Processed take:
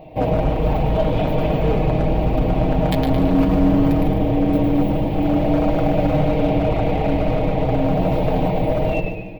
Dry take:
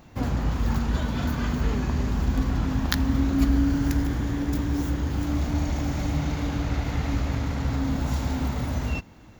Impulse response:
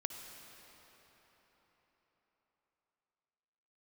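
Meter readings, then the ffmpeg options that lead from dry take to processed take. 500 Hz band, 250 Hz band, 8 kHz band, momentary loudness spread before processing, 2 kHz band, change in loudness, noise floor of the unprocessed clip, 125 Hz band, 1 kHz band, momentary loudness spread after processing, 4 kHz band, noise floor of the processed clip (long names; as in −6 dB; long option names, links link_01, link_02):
+17.5 dB, +7.5 dB, can't be measured, 5 LU, +3.0 dB, +7.5 dB, −48 dBFS, +5.5 dB, +11.5 dB, 3 LU, +1.5 dB, −24 dBFS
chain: -filter_complex "[0:a]firequalizer=gain_entry='entry(230,0);entry(640,15);entry(1400,-20);entry(2400,3);entry(6600,-28);entry(11000,-10)':delay=0.05:min_phase=1,asplit=2[link_01][link_02];[link_02]asplit=6[link_03][link_04][link_05][link_06][link_07][link_08];[link_03]adelay=110,afreqshift=-85,volume=-6dB[link_09];[link_04]adelay=220,afreqshift=-170,volume=-12.6dB[link_10];[link_05]adelay=330,afreqshift=-255,volume=-19.1dB[link_11];[link_06]adelay=440,afreqshift=-340,volume=-25.7dB[link_12];[link_07]adelay=550,afreqshift=-425,volume=-32.2dB[link_13];[link_08]adelay=660,afreqshift=-510,volume=-38.8dB[link_14];[link_09][link_10][link_11][link_12][link_13][link_14]amix=inputs=6:normalize=0[link_15];[link_01][link_15]amix=inputs=2:normalize=0,asoftclip=type=hard:threshold=-18dB,aecho=1:1:6.4:0.67,asplit=2[link_16][link_17];[link_17]aecho=0:1:147|294|441|588:0.237|0.0996|0.0418|0.0176[link_18];[link_16][link_18]amix=inputs=2:normalize=0,volume=4.5dB"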